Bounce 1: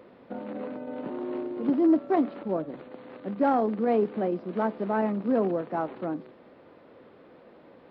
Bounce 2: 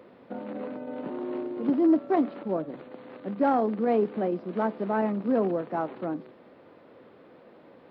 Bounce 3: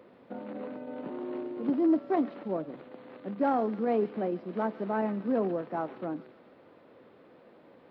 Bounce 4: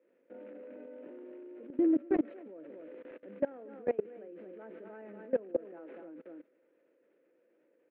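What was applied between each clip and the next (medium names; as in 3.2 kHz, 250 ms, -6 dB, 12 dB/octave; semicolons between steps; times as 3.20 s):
high-pass 69 Hz
feedback echo behind a high-pass 139 ms, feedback 60%, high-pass 2.2 kHz, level -9.5 dB; trim -3.5 dB
cabinet simulation 310–2800 Hz, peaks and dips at 320 Hz +8 dB, 510 Hz +8 dB, 780 Hz -9 dB, 1.1 kHz -10 dB, 1.7 kHz +4 dB, 2.5 kHz +4 dB; echo from a far wall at 41 m, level -9 dB; level held to a coarse grid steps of 23 dB; trim -2 dB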